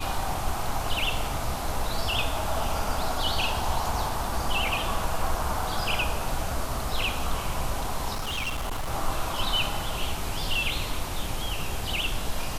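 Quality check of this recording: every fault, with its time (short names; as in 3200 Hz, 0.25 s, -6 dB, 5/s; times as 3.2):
8.13–8.92 clipped -26.5 dBFS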